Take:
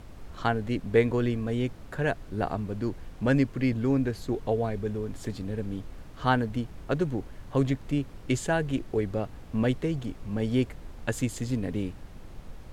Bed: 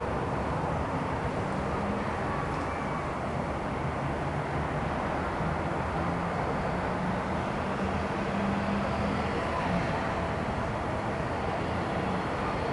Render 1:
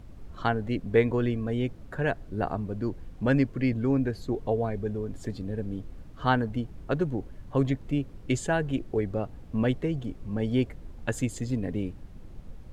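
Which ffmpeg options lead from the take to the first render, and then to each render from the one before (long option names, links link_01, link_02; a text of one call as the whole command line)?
ffmpeg -i in.wav -af "afftdn=noise_reduction=8:noise_floor=-46" out.wav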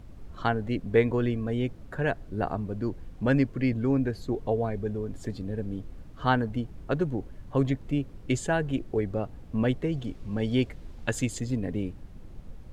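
ffmpeg -i in.wav -filter_complex "[0:a]asettb=1/sr,asplit=3[link_01][link_02][link_03];[link_01]atrim=end=9.924[link_04];[link_02]atrim=start=9.92:end=11.4,asetpts=PTS-STARTPTS,afade=type=in:duration=0.004:curve=qsin,afade=type=out:start_time=1.476:duration=0.004:curve=qsin,equalizer=frequency=4100:width_type=o:width=2.1:gain=5.5[link_05];[link_03]atrim=start=11.396[link_06];[link_04][link_05]acrossfade=duration=0.004:curve1=hsin:curve2=qsin[link_07];[link_07][link_06]acrossfade=duration=0.004:curve1=qsin:curve2=hsin" out.wav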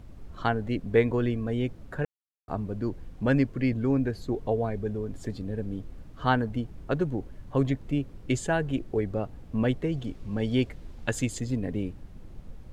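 ffmpeg -i in.wav -filter_complex "[0:a]asplit=3[link_01][link_02][link_03];[link_01]atrim=end=2.05,asetpts=PTS-STARTPTS,afade=type=out:start_time=2.046:duration=0.004:curve=hsin[link_04];[link_02]atrim=start=2.05:end=2.48,asetpts=PTS-STARTPTS,volume=0[link_05];[link_03]atrim=start=2.48,asetpts=PTS-STARTPTS,afade=type=in:duration=0.004:curve=hsin[link_06];[link_04][link_05][link_06]concat=n=3:v=0:a=1" out.wav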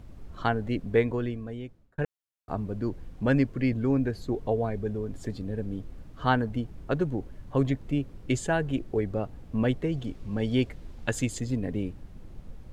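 ffmpeg -i in.wav -filter_complex "[0:a]asplit=2[link_01][link_02];[link_01]atrim=end=1.98,asetpts=PTS-STARTPTS,afade=type=out:start_time=0.82:duration=1.16[link_03];[link_02]atrim=start=1.98,asetpts=PTS-STARTPTS,afade=type=in:duration=0.004:curve=hsin[link_04];[link_03][link_04]concat=n=2:v=0:a=1" out.wav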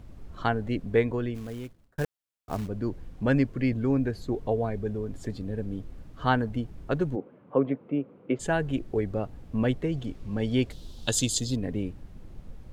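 ffmpeg -i in.wav -filter_complex "[0:a]asplit=3[link_01][link_02][link_03];[link_01]afade=type=out:start_time=1.34:duration=0.02[link_04];[link_02]acrusher=bits=4:mode=log:mix=0:aa=0.000001,afade=type=in:start_time=1.34:duration=0.02,afade=type=out:start_time=2.67:duration=0.02[link_05];[link_03]afade=type=in:start_time=2.67:duration=0.02[link_06];[link_04][link_05][link_06]amix=inputs=3:normalize=0,asplit=3[link_07][link_08][link_09];[link_07]afade=type=out:start_time=7.15:duration=0.02[link_10];[link_08]highpass=frequency=170:width=0.5412,highpass=frequency=170:width=1.3066,equalizer=frequency=490:width_type=q:width=4:gain=8,equalizer=frequency=1200:width_type=q:width=4:gain=3,equalizer=frequency=1800:width_type=q:width=4:gain=-9,lowpass=frequency=2300:width=0.5412,lowpass=frequency=2300:width=1.3066,afade=type=in:start_time=7.15:duration=0.02,afade=type=out:start_time=8.39:duration=0.02[link_11];[link_09]afade=type=in:start_time=8.39:duration=0.02[link_12];[link_10][link_11][link_12]amix=inputs=3:normalize=0,asettb=1/sr,asplit=3[link_13][link_14][link_15];[link_13]atrim=end=10.704[link_16];[link_14]atrim=start=10.7:end=11.56,asetpts=PTS-STARTPTS,afade=type=in:duration=0.004:curve=qsin,afade=type=out:start_time=0.856:duration=0.004:curve=qsin,highshelf=frequency=2800:width_type=q:width=3:gain=9[link_17];[link_15]atrim=start=11.556[link_18];[link_16][link_17]acrossfade=duration=0.004:curve1=hsin:curve2=qsin[link_19];[link_19][link_18]acrossfade=duration=0.004:curve1=qsin:curve2=hsin" out.wav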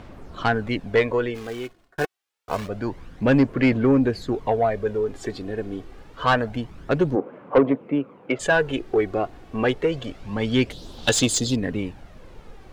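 ffmpeg -i in.wav -filter_complex "[0:a]aphaser=in_gain=1:out_gain=1:delay=2.8:decay=0.45:speed=0.27:type=sinusoidal,asplit=2[link_01][link_02];[link_02]highpass=frequency=720:poles=1,volume=18dB,asoftclip=type=tanh:threshold=-6dB[link_03];[link_01][link_03]amix=inputs=2:normalize=0,lowpass=frequency=3300:poles=1,volume=-6dB" out.wav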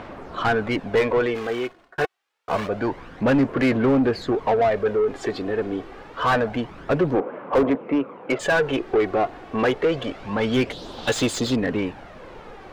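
ffmpeg -i in.wav -filter_complex "[0:a]asoftclip=type=hard:threshold=-12dB,asplit=2[link_01][link_02];[link_02]highpass=frequency=720:poles=1,volume=19dB,asoftclip=type=tanh:threshold=-12dB[link_03];[link_01][link_03]amix=inputs=2:normalize=0,lowpass=frequency=1400:poles=1,volume=-6dB" out.wav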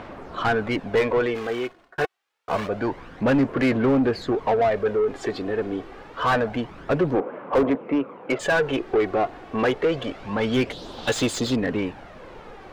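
ffmpeg -i in.wav -af "volume=-1dB" out.wav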